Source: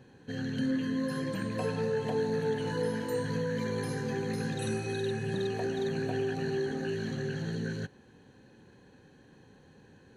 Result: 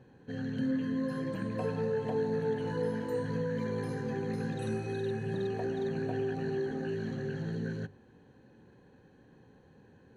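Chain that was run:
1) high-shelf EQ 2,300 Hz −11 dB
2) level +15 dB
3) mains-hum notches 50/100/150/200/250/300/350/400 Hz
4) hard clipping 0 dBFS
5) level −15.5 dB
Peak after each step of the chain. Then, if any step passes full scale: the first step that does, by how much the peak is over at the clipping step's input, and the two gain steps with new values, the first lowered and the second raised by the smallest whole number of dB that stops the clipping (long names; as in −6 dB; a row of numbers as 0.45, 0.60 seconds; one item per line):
−20.0, −5.0, −5.5, −5.5, −21.0 dBFS
no step passes full scale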